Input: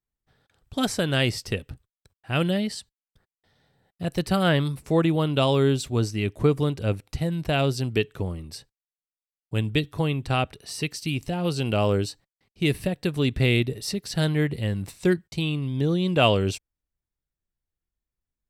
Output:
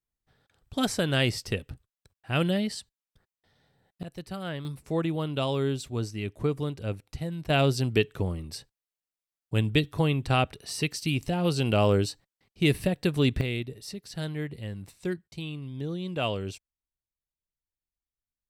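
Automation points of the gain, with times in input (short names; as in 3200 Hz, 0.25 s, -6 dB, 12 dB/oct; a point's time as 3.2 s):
-2 dB
from 4.03 s -14 dB
from 4.65 s -7 dB
from 7.5 s 0 dB
from 13.41 s -10 dB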